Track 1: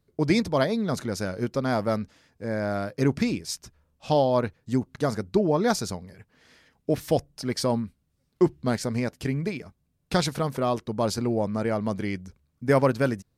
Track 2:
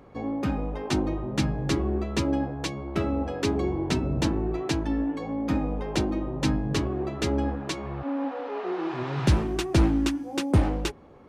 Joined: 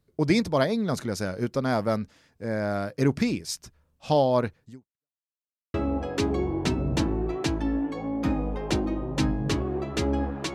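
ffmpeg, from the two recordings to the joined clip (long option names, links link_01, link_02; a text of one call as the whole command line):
ffmpeg -i cue0.wav -i cue1.wav -filter_complex "[0:a]apad=whole_dur=10.54,atrim=end=10.54,asplit=2[link_01][link_02];[link_01]atrim=end=5.18,asetpts=PTS-STARTPTS,afade=type=out:start_time=4.64:duration=0.54:curve=exp[link_03];[link_02]atrim=start=5.18:end=5.74,asetpts=PTS-STARTPTS,volume=0[link_04];[1:a]atrim=start=2.99:end=7.79,asetpts=PTS-STARTPTS,afade=type=in:duration=0.004:curve=hsin[link_05];[link_03][link_04][link_05]concat=n=3:v=0:a=1" out.wav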